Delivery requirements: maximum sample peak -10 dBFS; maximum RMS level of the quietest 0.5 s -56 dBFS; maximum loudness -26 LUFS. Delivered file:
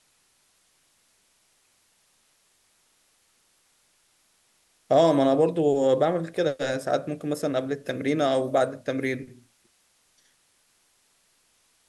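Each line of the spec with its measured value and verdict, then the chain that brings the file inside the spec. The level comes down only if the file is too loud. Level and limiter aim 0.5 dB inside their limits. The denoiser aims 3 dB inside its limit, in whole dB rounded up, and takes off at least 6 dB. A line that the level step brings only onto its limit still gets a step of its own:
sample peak -8.5 dBFS: fail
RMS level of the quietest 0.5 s -66 dBFS: pass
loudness -24.5 LUFS: fail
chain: trim -2 dB

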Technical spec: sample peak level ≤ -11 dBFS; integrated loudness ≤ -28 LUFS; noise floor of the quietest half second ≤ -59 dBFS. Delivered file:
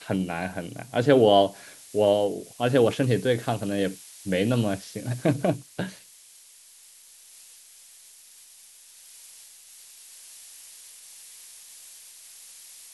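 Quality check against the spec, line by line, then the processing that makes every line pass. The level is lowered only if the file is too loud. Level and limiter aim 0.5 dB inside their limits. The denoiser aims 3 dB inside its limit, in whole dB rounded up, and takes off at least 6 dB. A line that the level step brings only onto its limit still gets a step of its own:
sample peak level -5.0 dBFS: fail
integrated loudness -24.5 LUFS: fail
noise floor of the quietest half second -52 dBFS: fail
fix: noise reduction 6 dB, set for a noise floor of -52 dBFS; trim -4 dB; peak limiter -11.5 dBFS

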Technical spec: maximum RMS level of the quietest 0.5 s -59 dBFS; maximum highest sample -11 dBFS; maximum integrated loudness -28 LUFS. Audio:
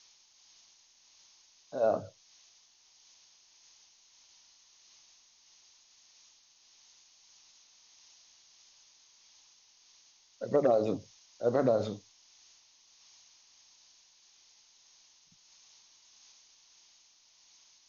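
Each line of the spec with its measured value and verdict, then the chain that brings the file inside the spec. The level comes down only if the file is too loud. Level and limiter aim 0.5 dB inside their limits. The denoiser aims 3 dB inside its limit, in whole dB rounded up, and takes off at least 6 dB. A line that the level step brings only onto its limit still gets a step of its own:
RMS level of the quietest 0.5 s -64 dBFS: pass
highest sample -14.5 dBFS: pass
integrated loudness -30.5 LUFS: pass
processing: none needed

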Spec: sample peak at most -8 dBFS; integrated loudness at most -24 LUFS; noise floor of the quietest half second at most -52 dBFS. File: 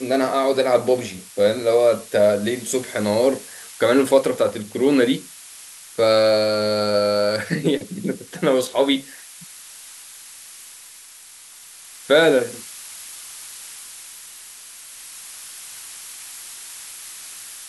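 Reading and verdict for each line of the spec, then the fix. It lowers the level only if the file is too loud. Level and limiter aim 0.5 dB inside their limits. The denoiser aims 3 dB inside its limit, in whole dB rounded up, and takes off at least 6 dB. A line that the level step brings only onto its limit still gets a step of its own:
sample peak -4.0 dBFS: fail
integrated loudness -19.5 LUFS: fail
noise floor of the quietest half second -44 dBFS: fail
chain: noise reduction 6 dB, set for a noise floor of -44 dBFS; trim -5 dB

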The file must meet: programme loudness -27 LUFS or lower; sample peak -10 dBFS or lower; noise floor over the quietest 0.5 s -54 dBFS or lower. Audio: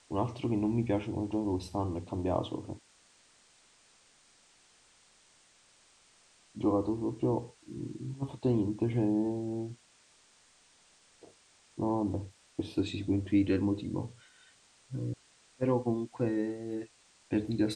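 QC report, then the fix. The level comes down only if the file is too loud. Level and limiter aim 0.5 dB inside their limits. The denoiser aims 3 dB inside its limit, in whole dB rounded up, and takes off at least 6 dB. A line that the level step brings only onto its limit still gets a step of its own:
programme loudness -33.0 LUFS: pass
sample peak -16.5 dBFS: pass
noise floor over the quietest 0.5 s -64 dBFS: pass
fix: none needed

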